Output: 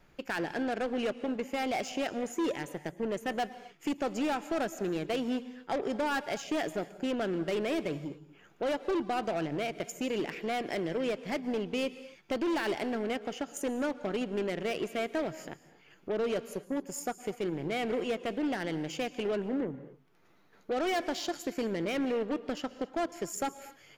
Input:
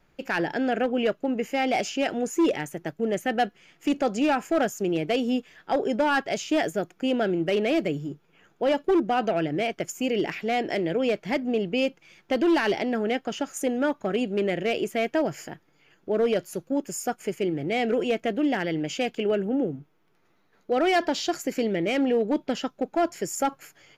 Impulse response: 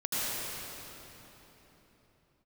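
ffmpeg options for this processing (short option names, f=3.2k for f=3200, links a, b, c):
-filter_complex "[0:a]aeval=exprs='0.168*(cos(1*acos(clip(val(0)/0.168,-1,1)))-cos(1*PI/2))+0.0188*(cos(5*acos(clip(val(0)/0.168,-1,1)))-cos(5*PI/2))+0.0211*(cos(7*acos(clip(val(0)/0.168,-1,1)))-cos(7*PI/2))':c=same,acompressor=threshold=-59dB:ratio=1.5,asplit=2[a][b];[1:a]atrim=start_sample=2205,afade=t=out:st=0.24:d=0.01,atrim=end_sample=11025,asetrate=30429,aresample=44100[c];[b][c]afir=irnorm=-1:irlink=0,volume=-21.5dB[d];[a][d]amix=inputs=2:normalize=0,volume=4.5dB"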